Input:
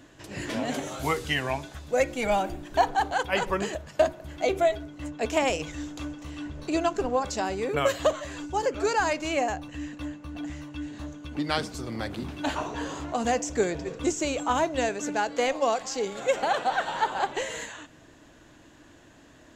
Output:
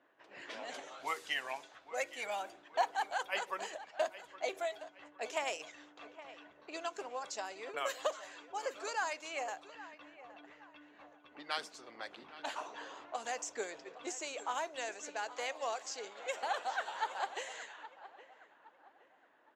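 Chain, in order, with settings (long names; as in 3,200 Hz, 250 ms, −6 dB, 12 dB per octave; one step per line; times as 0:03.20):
high-pass filter 580 Hz 12 dB per octave
harmonic and percussive parts rebalanced harmonic −6 dB
repeating echo 817 ms, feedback 36%, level −15.5 dB
low-pass that shuts in the quiet parts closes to 1,600 Hz, open at −29 dBFS
level −7.5 dB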